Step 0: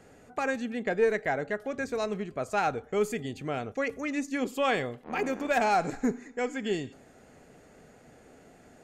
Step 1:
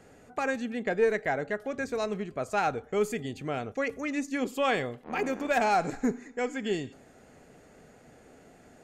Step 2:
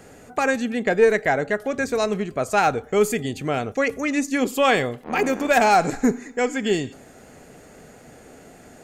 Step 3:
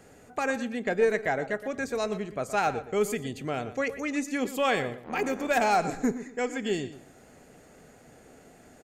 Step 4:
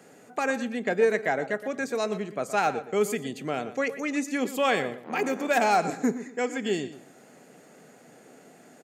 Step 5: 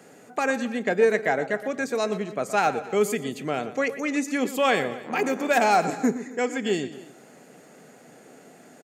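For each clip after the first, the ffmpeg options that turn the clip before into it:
ffmpeg -i in.wav -af anull out.wav
ffmpeg -i in.wav -af "highshelf=frequency=7600:gain=8,volume=8.5dB" out.wav
ffmpeg -i in.wav -filter_complex "[0:a]asplit=2[link_01][link_02];[link_02]adelay=119,lowpass=frequency=3900:poles=1,volume=-13dB,asplit=2[link_03][link_04];[link_04]adelay=119,lowpass=frequency=3900:poles=1,volume=0.23,asplit=2[link_05][link_06];[link_06]adelay=119,lowpass=frequency=3900:poles=1,volume=0.23[link_07];[link_01][link_03][link_05][link_07]amix=inputs=4:normalize=0,volume=-7.5dB" out.wav
ffmpeg -i in.wav -af "highpass=frequency=150:width=0.5412,highpass=frequency=150:width=1.3066,volume=1.5dB" out.wav
ffmpeg -i in.wav -af "aecho=1:1:269:0.0944,volume=2.5dB" out.wav

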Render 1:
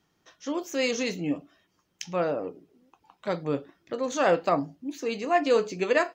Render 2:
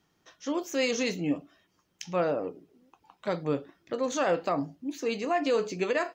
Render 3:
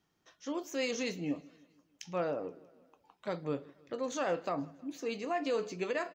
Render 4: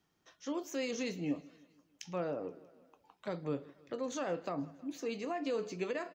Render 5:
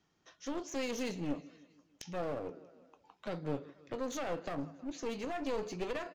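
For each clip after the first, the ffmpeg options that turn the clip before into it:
ffmpeg -i in.wav -af "alimiter=limit=-18dB:level=0:latency=1:release=77" out.wav
ffmpeg -i in.wav -af "aecho=1:1:159|318|477|636:0.0631|0.0366|0.0212|0.0123,volume=-6.5dB" out.wav
ffmpeg -i in.wav -filter_complex "[0:a]acrossover=split=410[link_01][link_02];[link_02]acompressor=threshold=-41dB:ratio=2[link_03];[link_01][link_03]amix=inputs=2:normalize=0" out.wav
ffmpeg -i in.wav -af "aresample=16000,aresample=44100,aeval=exprs='clip(val(0),-1,0.00708)':channel_layout=same,volume=2dB" out.wav

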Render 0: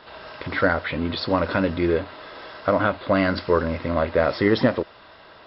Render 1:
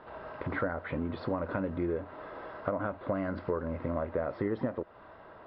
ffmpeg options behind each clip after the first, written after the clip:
ffmpeg -i in.wav -af "lowpass=1300,acompressor=threshold=-28dB:ratio=4,volume=-2dB" out.wav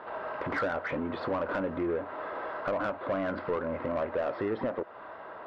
ffmpeg -i in.wav -filter_complex "[0:a]asplit=2[link_01][link_02];[link_02]highpass=frequency=720:poles=1,volume=23dB,asoftclip=type=tanh:threshold=-13.5dB[link_03];[link_01][link_03]amix=inputs=2:normalize=0,lowpass=frequency=1800:poles=1,volume=-6dB,volume=-6dB" out.wav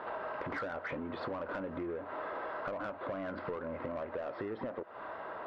ffmpeg -i in.wav -af "acompressor=threshold=-38dB:ratio=6,volume=1.5dB" out.wav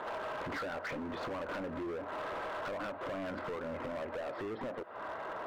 ffmpeg -i in.wav -af "asoftclip=type=hard:threshold=-38.5dB,volume=2.5dB" out.wav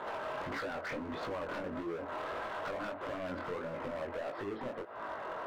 ffmpeg -i in.wav -af "flanger=delay=18:depth=5.7:speed=1.6,volume=3dB" out.wav

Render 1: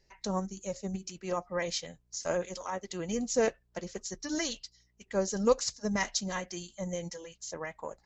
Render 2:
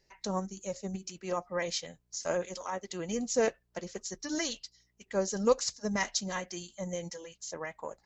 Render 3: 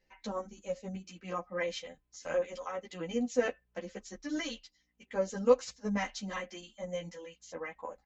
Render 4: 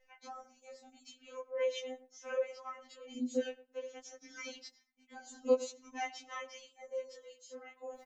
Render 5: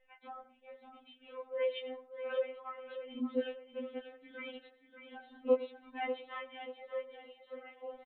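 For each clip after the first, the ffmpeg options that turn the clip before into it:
ffmpeg -i in.wav -af "lowshelf=frequency=110:gain=-6.5" out.wav
ffmpeg -i in.wav -filter_complex "[0:a]highshelf=frequency=3800:width_type=q:width=1.5:gain=-7.5,aecho=1:1:3.9:0.5,asplit=2[link_01][link_02];[link_02]adelay=11.2,afreqshift=0.47[link_03];[link_01][link_03]amix=inputs=2:normalize=1" out.wav
ffmpeg -i in.wav -filter_complex "[0:a]areverse,acompressor=mode=upward:threshold=-37dB:ratio=2.5,areverse,asplit=2[link_01][link_02];[link_02]adelay=111,lowpass=frequency=1000:poles=1,volume=-15dB,asplit=2[link_03][link_04];[link_04]adelay=111,lowpass=frequency=1000:poles=1,volume=0.18[link_05];[link_01][link_03][link_05]amix=inputs=3:normalize=0,afftfilt=real='re*3.46*eq(mod(b,12),0)':imag='im*3.46*eq(mod(b,12),0)':win_size=2048:overlap=0.75,volume=-5dB" out.wav
ffmpeg -i in.wav -filter_complex "[0:a]asplit=2[link_01][link_02];[link_02]aecho=0:1:586|1172|1758|2344:0.316|0.111|0.0387|0.0136[link_03];[link_01][link_03]amix=inputs=2:normalize=0,aresample=8000,aresample=44100" out.wav

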